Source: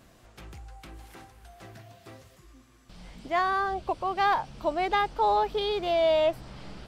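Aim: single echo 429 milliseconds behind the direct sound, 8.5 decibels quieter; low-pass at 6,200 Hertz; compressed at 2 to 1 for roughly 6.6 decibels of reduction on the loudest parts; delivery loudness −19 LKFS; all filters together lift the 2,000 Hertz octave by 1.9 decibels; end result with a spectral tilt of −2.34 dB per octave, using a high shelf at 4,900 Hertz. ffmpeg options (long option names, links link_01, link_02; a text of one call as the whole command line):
ffmpeg -i in.wav -af "lowpass=6200,equalizer=frequency=2000:width_type=o:gain=3.5,highshelf=frequency=4900:gain=-7,acompressor=threshold=-32dB:ratio=2,aecho=1:1:429:0.376,volume=12.5dB" out.wav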